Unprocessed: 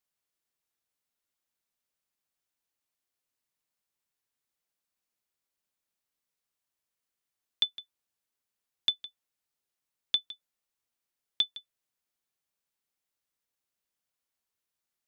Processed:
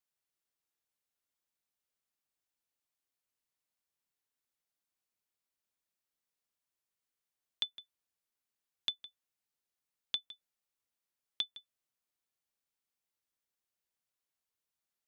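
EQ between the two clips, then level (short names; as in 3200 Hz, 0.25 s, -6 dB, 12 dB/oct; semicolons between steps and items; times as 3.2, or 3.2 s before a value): dynamic EQ 4500 Hz, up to -7 dB, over -41 dBFS, Q 1.2; -4.0 dB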